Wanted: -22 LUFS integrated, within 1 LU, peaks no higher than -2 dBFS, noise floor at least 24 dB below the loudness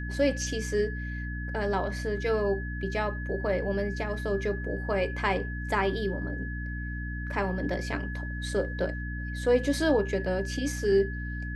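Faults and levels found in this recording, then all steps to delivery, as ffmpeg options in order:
hum 60 Hz; highest harmonic 300 Hz; hum level -32 dBFS; steady tone 1.7 kHz; tone level -39 dBFS; loudness -30.0 LUFS; peak level -11.5 dBFS; loudness target -22.0 LUFS
-> -af "bandreject=f=60:t=h:w=6,bandreject=f=120:t=h:w=6,bandreject=f=180:t=h:w=6,bandreject=f=240:t=h:w=6,bandreject=f=300:t=h:w=6"
-af "bandreject=f=1700:w=30"
-af "volume=2.51"

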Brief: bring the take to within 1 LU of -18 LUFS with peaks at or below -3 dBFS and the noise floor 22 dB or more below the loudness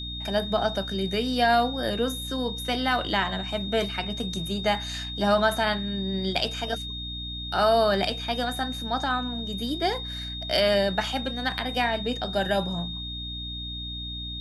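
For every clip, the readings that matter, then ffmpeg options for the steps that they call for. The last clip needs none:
hum 60 Hz; highest harmonic 300 Hz; hum level -35 dBFS; steady tone 3.7 kHz; tone level -34 dBFS; loudness -26.5 LUFS; peak level -9.5 dBFS; loudness target -18.0 LUFS
-> -af "bandreject=f=60:t=h:w=6,bandreject=f=120:t=h:w=6,bandreject=f=180:t=h:w=6,bandreject=f=240:t=h:w=6,bandreject=f=300:t=h:w=6"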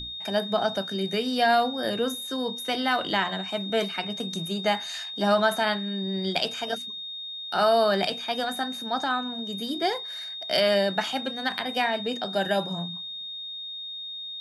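hum not found; steady tone 3.7 kHz; tone level -34 dBFS
-> -af "bandreject=f=3700:w=30"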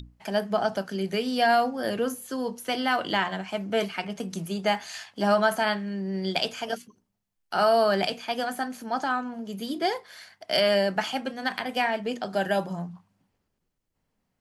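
steady tone not found; loudness -27.0 LUFS; peak level -9.5 dBFS; loudness target -18.0 LUFS
-> -af "volume=2.82,alimiter=limit=0.708:level=0:latency=1"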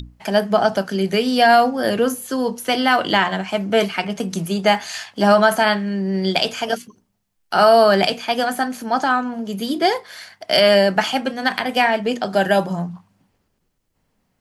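loudness -18.5 LUFS; peak level -3.0 dBFS; noise floor -69 dBFS

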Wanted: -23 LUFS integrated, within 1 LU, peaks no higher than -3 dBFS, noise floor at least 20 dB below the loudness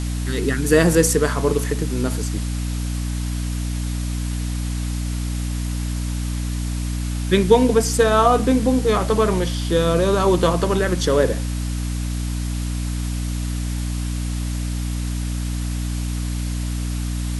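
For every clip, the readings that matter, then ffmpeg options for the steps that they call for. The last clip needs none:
hum 60 Hz; highest harmonic 300 Hz; hum level -22 dBFS; noise floor -25 dBFS; noise floor target -42 dBFS; loudness -21.5 LUFS; peak level -2.0 dBFS; loudness target -23.0 LUFS
-> -af "bandreject=f=60:t=h:w=6,bandreject=f=120:t=h:w=6,bandreject=f=180:t=h:w=6,bandreject=f=240:t=h:w=6,bandreject=f=300:t=h:w=6"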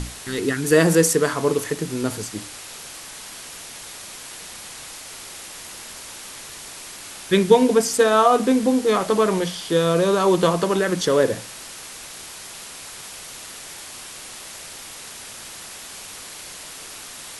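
hum not found; noise floor -38 dBFS; noise floor target -39 dBFS
-> -af "afftdn=nr=6:nf=-38"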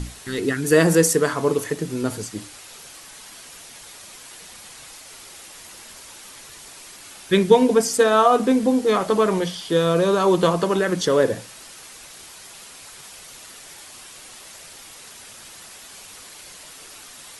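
noise floor -43 dBFS; loudness -19.5 LUFS; peak level -2.5 dBFS; loudness target -23.0 LUFS
-> -af "volume=0.668"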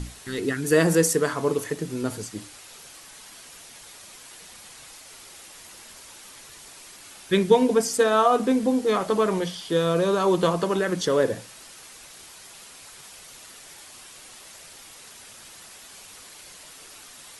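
loudness -23.0 LUFS; peak level -6.0 dBFS; noise floor -46 dBFS

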